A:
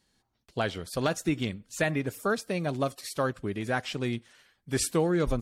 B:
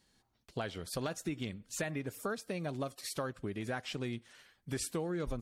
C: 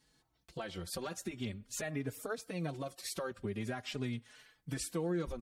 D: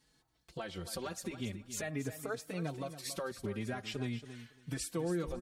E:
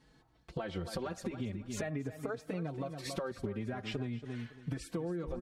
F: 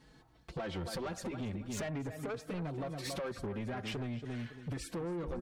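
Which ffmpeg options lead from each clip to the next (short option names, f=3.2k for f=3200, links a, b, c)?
-af "acompressor=threshold=-37dB:ratio=3"
-filter_complex "[0:a]alimiter=level_in=5dB:limit=-24dB:level=0:latency=1:release=84,volume=-5dB,asplit=2[a][b];[b]adelay=4.2,afreqshift=0.45[c];[a][c]amix=inputs=2:normalize=1,volume=3dB"
-af "aecho=1:1:278|556:0.251|0.0427"
-af "lowpass=f=1.4k:p=1,acompressor=threshold=-44dB:ratio=10,volume=10dB"
-af "asoftclip=type=tanh:threshold=-38dB,volume=4dB"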